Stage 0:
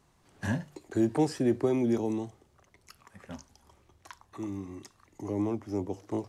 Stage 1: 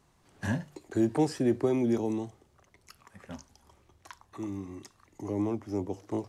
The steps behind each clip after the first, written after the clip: nothing audible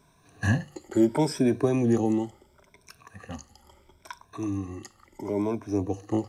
moving spectral ripple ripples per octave 1.6, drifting +0.73 Hz, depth 14 dB; gain +3 dB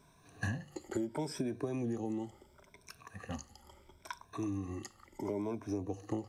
compressor 12:1, threshold -30 dBFS, peak gain reduction 15 dB; gain -2.5 dB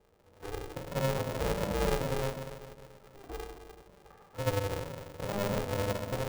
Butterworth band-pass 350 Hz, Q 0.86; shoebox room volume 1200 m³, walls mixed, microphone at 2.4 m; polarity switched at an audio rate 200 Hz

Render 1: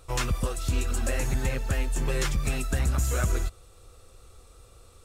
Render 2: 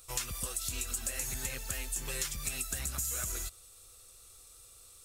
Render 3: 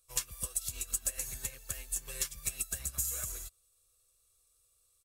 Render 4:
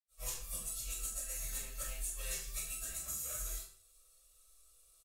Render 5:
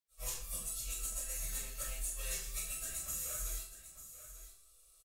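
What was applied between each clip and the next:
pre-emphasis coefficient 0.9; compressor, threshold -38 dBFS, peak gain reduction 7.5 dB; gain +6.5 dB
bell 14000 Hz +5.5 dB 1.3 oct; comb 1.8 ms, depth 35%; upward expander 2.5:1, over -41 dBFS
compressor, threshold -42 dBFS, peak gain reduction 14 dB; doubler 43 ms -12 dB; reverb RT60 0.50 s, pre-delay 74 ms; gain +12.5 dB
soft clip -27.5 dBFS, distortion -28 dB; echo 0.893 s -12.5 dB; gain +1 dB

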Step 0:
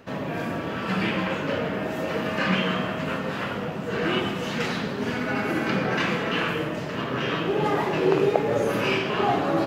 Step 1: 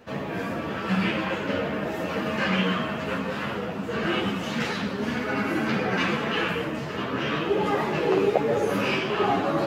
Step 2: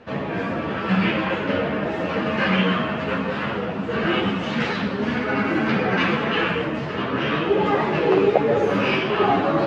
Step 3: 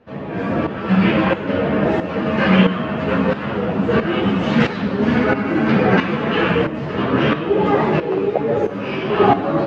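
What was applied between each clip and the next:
ensemble effect; gain +2.5 dB
LPF 3900 Hz 12 dB/oct; gain +4.5 dB
tilt shelf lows +3.5 dB; AGC gain up to 7 dB; tremolo saw up 1.5 Hz, depth 70%; gain +1.5 dB

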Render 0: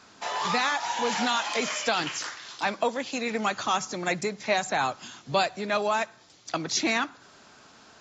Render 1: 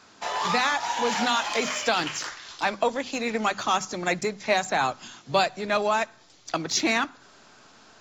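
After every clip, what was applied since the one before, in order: notches 50/100/150/200/250 Hz; in parallel at -10 dB: backlash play -27 dBFS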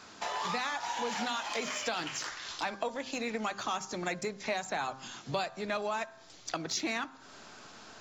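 de-hum 132.4 Hz, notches 13; compressor 2.5:1, threshold -39 dBFS, peak gain reduction 14 dB; gain +2 dB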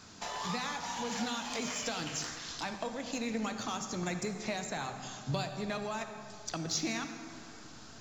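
tone controls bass +13 dB, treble +7 dB; on a send at -7 dB: reverb RT60 2.6 s, pre-delay 38 ms; on the sum: gain -5 dB

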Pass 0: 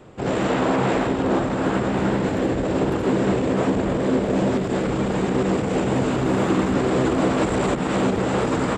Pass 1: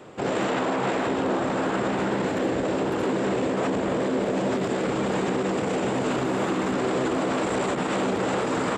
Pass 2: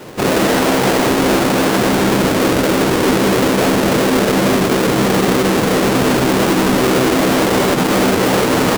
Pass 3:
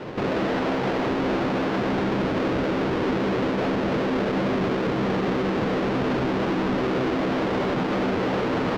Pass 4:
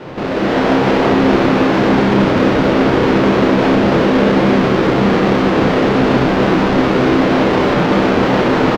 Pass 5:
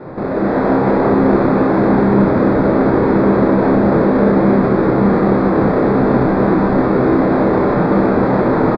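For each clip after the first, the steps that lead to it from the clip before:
HPF 290 Hz 6 dB/oct; limiter -20.5 dBFS, peak gain reduction 9.5 dB; gain +3.5 dB
half-waves squared off; gain +7 dB
limiter -20 dBFS, peak gain reduction 10 dB; air absorption 230 m
on a send: reverse bouncing-ball echo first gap 30 ms, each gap 1.15×, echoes 5; on the sum: AGC gain up to 6.5 dB; gain +3 dB
running mean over 15 samples; doubler 25 ms -13 dB

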